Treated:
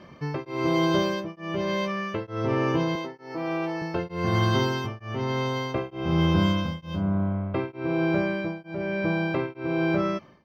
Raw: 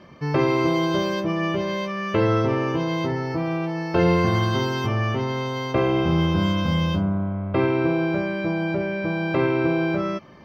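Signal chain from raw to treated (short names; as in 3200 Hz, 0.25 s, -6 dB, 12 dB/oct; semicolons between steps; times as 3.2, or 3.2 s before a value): 2.95–3.82 HPF 270 Hz 12 dB/oct; beating tremolo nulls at 1.1 Hz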